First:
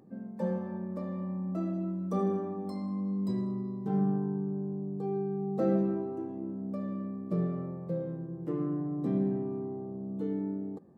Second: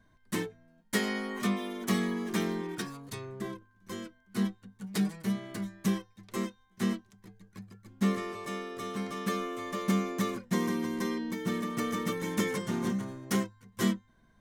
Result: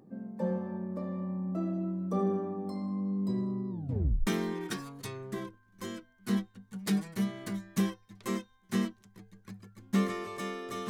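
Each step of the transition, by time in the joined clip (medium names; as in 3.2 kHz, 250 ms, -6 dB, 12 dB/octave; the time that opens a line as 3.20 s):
first
3.70 s: tape stop 0.57 s
4.27 s: go over to second from 2.35 s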